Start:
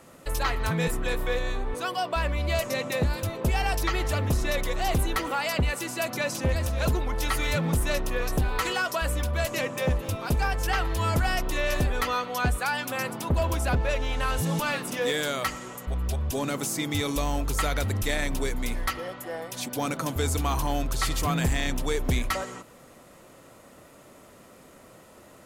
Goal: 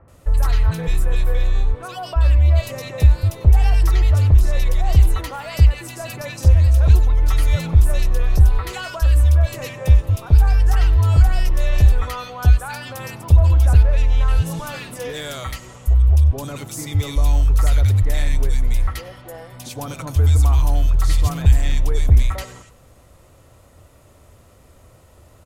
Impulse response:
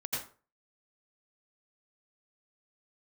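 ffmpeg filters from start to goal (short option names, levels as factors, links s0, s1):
-filter_complex "[0:a]lowshelf=f=130:t=q:w=1.5:g=14,acrossover=split=1700[s0][s1];[s1]adelay=80[s2];[s0][s2]amix=inputs=2:normalize=0,asplit=2[s3][s4];[1:a]atrim=start_sample=2205,atrim=end_sample=3969,asetrate=39249,aresample=44100[s5];[s4][s5]afir=irnorm=-1:irlink=0,volume=0.106[s6];[s3][s6]amix=inputs=2:normalize=0,volume=0.841"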